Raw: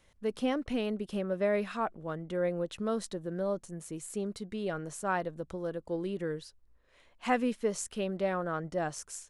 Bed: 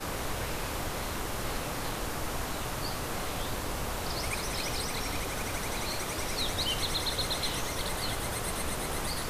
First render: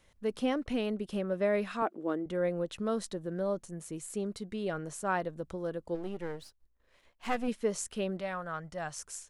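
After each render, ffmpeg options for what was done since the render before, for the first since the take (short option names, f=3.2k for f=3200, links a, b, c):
-filter_complex "[0:a]asettb=1/sr,asplit=3[a][b][c];[a]atrim=end=1.824[d];[b]atrim=start=1.82:end=2.26,asetpts=PTS-STARTPTS,afade=t=in:d=0.004:c=qsin,afade=t=out:st=0.436:d=0.004:c=qsin,highpass=f=310:t=q:w=3.5[e];[c]atrim=start=2.256[f];[d][e]acrossfade=d=0.004:c1=hsin:c2=qsin[g];[g][f]acrossfade=d=0.004:c1=qsin:c2=hsin,asplit=3[h][i][j];[h]afade=t=out:st=5.94:d=0.02[k];[i]aeval=exprs='if(lt(val(0),0),0.251*val(0),val(0))':c=same,afade=t=in:st=5.94:d=0.02,afade=t=out:st=7.47:d=0.02[l];[j]afade=t=in:st=7.47:d=0.02[m];[k][l][m]amix=inputs=3:normalize=0,asettb=1/sr,asplit=3[n][o][p];[n]atrim=end=8.204[q];[o]atrim=start=8.2:end=8.99,asetpts=PTS-STARTPTS,afade=t=in:d=0.004:c=qsin,afade=t=out:st=0.786:d=0.004:c=qsin,equalizer=f=330:w=0.85:g=-13[r];[p]atrim=start=8.986[s];[q][r]acrossfade=d=0.004:c1=hsin:c2=qsin[t];[t][s]acrossfade=d=0.004:c1=qsin:c2=hsin"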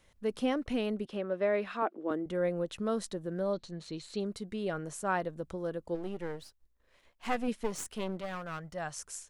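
-filter_complex "[0:a]asettb=1/sr,asplit=3[a][b][c];[a]atrim=end=1.054[d];[b]atrim=start=1.05:end=2.11,asetpts=PTS-STARTPTS,afade=t=in:d=0.004:c=qsin,afade=t=out:st=1.056:d=0.004:c=qsin,acrossover=split=220 4800:gain=0.224 1 0.224[e][f][g];[e][f][g]amix=inputs=3:normalize=0[h];[c]atrim=start=2.106[i];[d][h]acrossfade=d=0.004:c1=hsin:c2=qsin[j];[j][i]acrossfade=d=0.004:c1=qsin:c2=hsin,asettb=1/sr,asplit=3[k][l][m];[k]atrim=end=3.534[n];[l]atrim=start=3.53:end=4.2,asetpts=PTS-STARTPTS,afade=t=in:d=0.004:c=qsin,afade=t=out:st=0.666:d=0.004:c=qsin,lowpass=f=4.1k:t=q:w=9.6[o];[m]atrim=start=4.196[p];[n][o]acrossfade=d=0.004:c1=hsin:c2=qsin[q];[q][p]acrossfade=d=0.004:c1=qsin:c2=hsin,asettb=1/sr,asplit=3[r][s][t];[r]atrim=end=7.544[u];[s]atrim=start=7.54:end=8.73,asetpts=PTS-STARTPTS,afade=t=in:d=0.004:c=qsin,afade=t=out:st=1.186:d=0.004:c=qsin,aeval=exprs='clip(val(0),-1,0.0075)':c=same[v];[t]atrim=start=8.726[w];[u][v]acrossfade=d=0.004:c1=hsin:c2=qsin[x];[x][w]acrossfade=d=0.004:c1=qsin:c2=hsin"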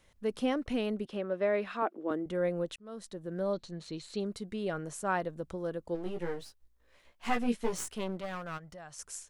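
-filter_complex "[0:a]asettb=1/sr,asplit=3[a][b][c];[a]atrim=end=6.044[d];[b]atrim=start=6.04:end=7.92,asetpts=PTS-STARTPTS,afade=t=in:d=0.004:c=qsin,afade=t=out:st=1.876:d=0.004:c=qsin,asplit=2[e][f];[f]adelay=17,volume=-2.5dB[g];[e][g]amix=inputs=2:normalize=0,atrim=end_sample=82908[h];[c]atrim=start=7.916[i];[d][h]acrossfade=d=0.004:c1=hsin:c2=qsin[j];[j][i]acrossfade=d=0.004:c1=qsin:c2=hsin,asplit=3[k][l][m];[k]afade=t=out:st=8.57:d=0.02[n];[l]acompressor=threshold=-47dB:ratio=3:attack=3.2:release=140:knee=1:detection=peak,afade=t=in:st=8.57:d=0.02,afade=t=out:st=8.98:d=0.02[o];[m]afade=t=in:st=8.98:d=0.02[p];[n][o][p]amix=inputs=3:normalize=0,asplit=2[q][r];[q]atrim=end=2.76,asetpts=PTS-STARTPTS,afade=t=out:st=2.756:d=0.004:c=hsin[s];[r]atrim=start=2.76,asetpts=PTS-STARTPTS,afade=t=in:d=0.68[t];[s][t]concat=n=2:v=0:a=1"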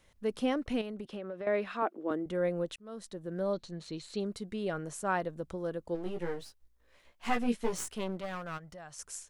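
-filter_complex "[0:a]asettb=1/sr,asplit=3[a][b][c];[a]atrim=end=0.814[d];[b]atrim=start=0.81:end=1.47,asetpts=PTS-STARTPTS,afade=t=in:d=0.004:c=qsin,afade=t=out:st=0.656:d=0.004:c=qsin,acompressor=threshold=-36dB:ratio=6:attack=3.2:release=140:knee=1:detection=peak[e];[c]atrim=start=1.466[f];[d][e]acrossfade=d=0.004:c1=hsin:c2=qsin[g];[g][f]acrossfade=d=0.004:c1=qsin:c2=hsin"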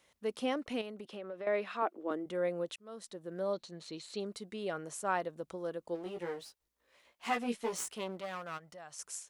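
-af "highpass=f=410:p=1,equalizer=f=1.6k:t=o:w=0.35:g=-3"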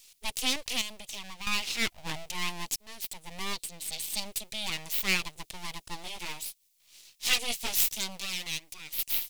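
-af "aeval=exprs='abs(val(0))':c=same,aexciter=amount=5.5:drive=7.4:freq=2.2k"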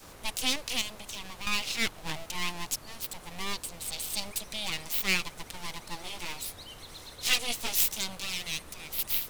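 -filter_complex "[1:a]volume=-15.5dB[a];[0:a][a]amix=inputs=2:normalize=0"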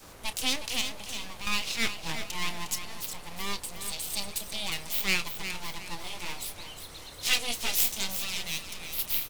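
-filter_complex "[0:a]asplit=2[a][b];[b]adelay=30,volume=-13dB[c];[a][c]amix=inputs=2:normalize=0,aecho=1:1:359|718|1077|1436:0.335|0.114|0.0387|0.0132"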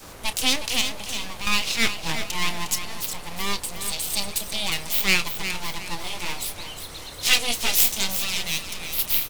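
-af "volume=7dB"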